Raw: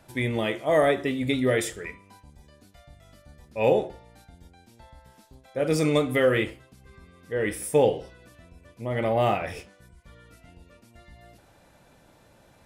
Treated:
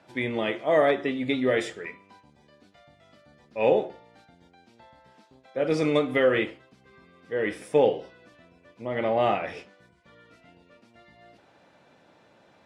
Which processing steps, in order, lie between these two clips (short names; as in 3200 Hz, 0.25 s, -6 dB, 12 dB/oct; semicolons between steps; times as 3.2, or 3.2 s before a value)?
BPF 190–4300 Hz; AAC 48 kbps 44100 Hz